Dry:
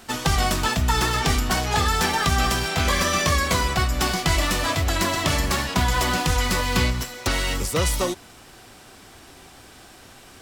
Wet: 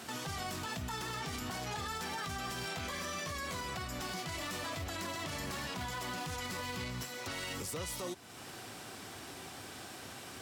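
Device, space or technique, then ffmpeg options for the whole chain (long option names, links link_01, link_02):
podcast mastering chain: -af "highpass=frequency=84:width=0.5412,highpass=frequency=84:width=1.3066,acompressor=threshold=-40dB:ratio=2.5,alimiter=level_in=6.5dB:limit=-24dB:level=0:latency=1:release=17,volume=-6.5dB" -ar 44100 -c:a libmp3lame -b:a 112k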